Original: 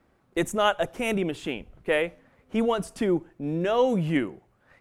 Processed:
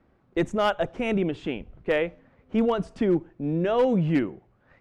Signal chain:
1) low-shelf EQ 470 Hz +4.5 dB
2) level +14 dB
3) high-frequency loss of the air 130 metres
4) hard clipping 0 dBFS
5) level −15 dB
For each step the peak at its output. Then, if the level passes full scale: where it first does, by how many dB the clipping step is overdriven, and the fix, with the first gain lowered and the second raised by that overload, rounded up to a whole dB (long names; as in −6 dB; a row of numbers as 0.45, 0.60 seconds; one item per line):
−8.5, +5.5, +4.5, 0.0, −15.0 dBFS
step 2, 4.5 dB
step 2 +9 dB, step 5 −10 dB